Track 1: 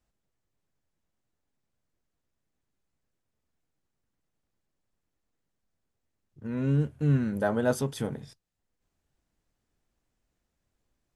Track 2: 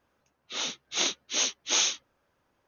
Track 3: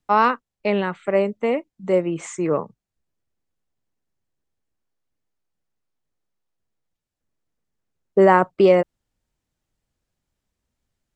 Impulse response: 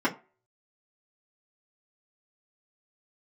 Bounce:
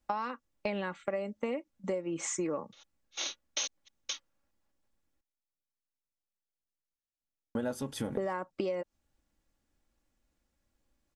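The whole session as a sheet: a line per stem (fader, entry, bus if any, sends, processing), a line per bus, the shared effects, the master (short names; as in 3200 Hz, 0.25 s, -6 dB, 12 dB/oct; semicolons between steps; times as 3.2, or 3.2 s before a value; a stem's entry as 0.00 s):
-0.5 dB, 0.00 s, muted 5.21–7.55, no bus, no send, dry
2.95 s -14 dB -> 3.64 s -1 dB, 2.20 s, bus A, no send, HPF 470 Hz; step gate "xx.x.x..xx" 143 bpm -60 dB
-4.5 dB, 0.00 s, bus A, no send, bell 5800 Hz +8.5 dB 0.76 oct
bus A: 0.0 dB, gate -41 dBFS, range -14 dB; compressor 2:1, threshold -21 dBFS, peak gain reduction 4.5 dB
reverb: off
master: comb 3.6 ms, depth 43%; compressor 16:1, threshold -30 dBFS, peak gain reduction 14.5 dB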